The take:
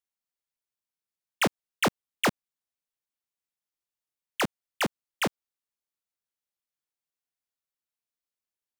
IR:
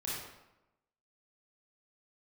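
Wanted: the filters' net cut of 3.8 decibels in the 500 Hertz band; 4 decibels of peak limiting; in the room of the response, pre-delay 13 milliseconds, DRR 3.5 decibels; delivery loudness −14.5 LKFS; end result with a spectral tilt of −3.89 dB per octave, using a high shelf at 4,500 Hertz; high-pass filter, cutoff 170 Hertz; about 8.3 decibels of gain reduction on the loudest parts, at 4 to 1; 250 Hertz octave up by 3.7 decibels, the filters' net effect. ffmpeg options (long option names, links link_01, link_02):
-filter_complex "[0:a]highpass=170,equalizer=frequency=250:width_type=o:gain=8,equalizer=frequency=500:width_type=o:gain=-7.5,highshelf=frequency=4500:gain=-5,acompressor=threshold=-30dB:ratio=4,alimiter=level_in=1dB:limit=-24dB:level=0:latency=1,volume=-1dB,asplit=2[link_01][link_02];[1:a]atrim=start_sample=2205,adelay=13[link_03];[link_02][link_03]afir=irnorm=-1:irlink=0,volume=-6dB[link_04];[link_01][link_04]amix=inputs=2:normalize=0,volume=21.5dB"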